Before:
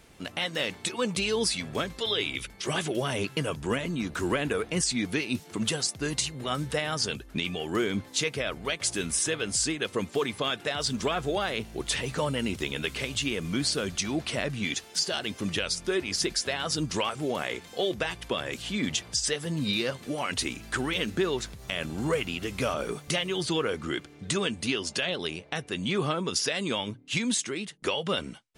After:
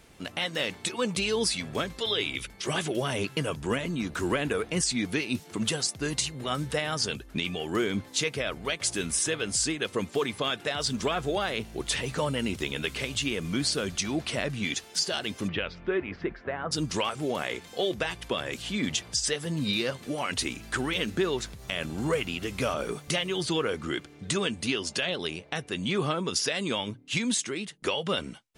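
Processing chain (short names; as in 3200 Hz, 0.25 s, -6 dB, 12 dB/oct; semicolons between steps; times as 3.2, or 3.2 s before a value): 15.47–16.71 LPF 3200 Hz -> 1600 Hz 24 dB/oct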